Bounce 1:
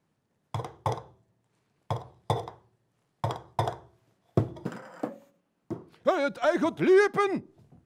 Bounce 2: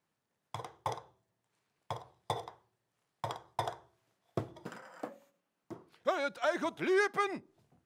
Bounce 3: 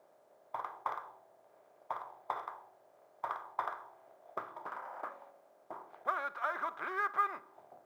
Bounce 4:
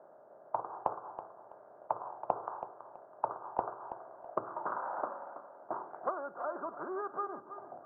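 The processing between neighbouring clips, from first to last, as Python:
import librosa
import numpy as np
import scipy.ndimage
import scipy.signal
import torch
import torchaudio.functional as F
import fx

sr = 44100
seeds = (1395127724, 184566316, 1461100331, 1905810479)

y1 = fx.low_shelf(x, sr, hz=470.0, db=-11.5)
y1 = y1 * librosa.db_to_amplitude(-3.0)
y2 = fx.bin_compress(y1, sr, power=0.6)
y2 = fx.auto_wah(y2, sr, base_hz=600.0, top_hz=1200.0, q=3.4, full_db=-31.0, direction='up')
y2 = fx.quant_companded(y2, sr, bits=8)
y2 = y2 * librosa.db_to_amplitude(1.5)
y3 = scipy.signal.sosfilt(scipy.signal.cheby1(4, 1.0, [100.0, 1500.0], 'bandpass', fs=sr, output='sos'), y2)
y3 = fx.env_lowpass_down(y3, sr, base_hz=540.0, full_db=-37.5)
y3 = fx.echo_feedback(y3, sr, ms=327, feedback_pct=27, wet_db=-11.5)
y3 = y3 * librosa.db_to_amplitude(8.5)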